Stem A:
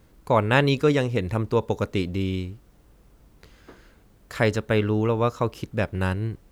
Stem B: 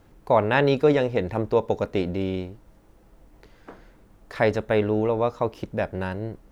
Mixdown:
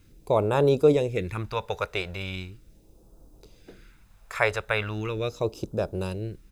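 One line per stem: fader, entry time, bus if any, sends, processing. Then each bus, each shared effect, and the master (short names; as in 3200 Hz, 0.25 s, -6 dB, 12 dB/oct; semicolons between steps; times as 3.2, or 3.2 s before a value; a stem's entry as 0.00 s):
-4.0 dB, 0.00 s, no send, HPF 290 Hz 24 dB/oct; comb 0.8 ms, depth 75%
-1.0 dB, 0.00 s, no send, dry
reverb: off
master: phaser stages 2, 0.39 Hz, lowest notch 250–2000 Hz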